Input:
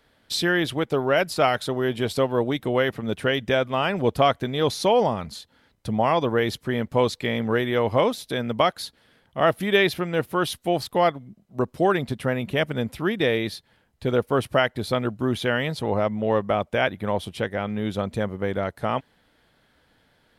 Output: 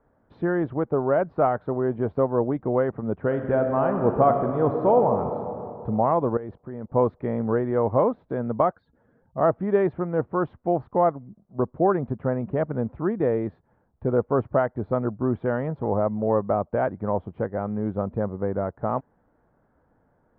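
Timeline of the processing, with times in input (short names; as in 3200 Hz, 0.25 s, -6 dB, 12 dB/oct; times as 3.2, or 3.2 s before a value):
3.25–5.36 reverb throw, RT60 2.7 s, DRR 4.5 dB
6.37–6.9 level quantiser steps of 17 dB
8.72–9.38 spectral contrast raised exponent 1.7
whole clip: LPF 1200 Hz 24 dB/oct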